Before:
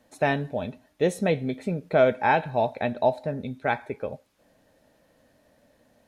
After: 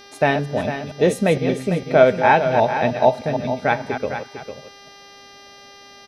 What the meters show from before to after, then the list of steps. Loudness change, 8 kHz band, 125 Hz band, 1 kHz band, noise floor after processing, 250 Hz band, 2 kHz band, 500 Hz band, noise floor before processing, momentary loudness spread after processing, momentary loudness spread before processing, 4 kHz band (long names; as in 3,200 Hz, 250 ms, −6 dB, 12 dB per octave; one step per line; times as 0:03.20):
+7.0 dB, can't be measured, +6.5 dB, +7.5 dB, −45 dBFS, +6.5 dB, +7.0 dB, +7.0 dB, −64 dBFS, 14 LU, 13 LU, +8.5 dB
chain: delay that plays each chunk backwards 153 ms, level −9 dB
hum with harmonics 400 Hz, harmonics 15, −51 dBFS −2 dB per octave
single-tap delay 451 ms −9.5 dB
level +6 dB